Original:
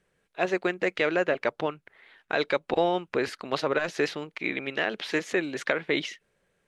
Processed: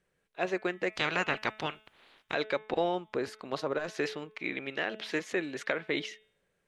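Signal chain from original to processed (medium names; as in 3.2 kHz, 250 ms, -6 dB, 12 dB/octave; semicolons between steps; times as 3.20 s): 0.92–2.33 s: spectral peaks clipped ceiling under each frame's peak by 21 dB; de-hum 216 Hz, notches 17; 2.94–3.87 s: dynamic bell 2.4 kHz, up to -7 dB, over -44 dBFS, Q 0.96; trim -5 dB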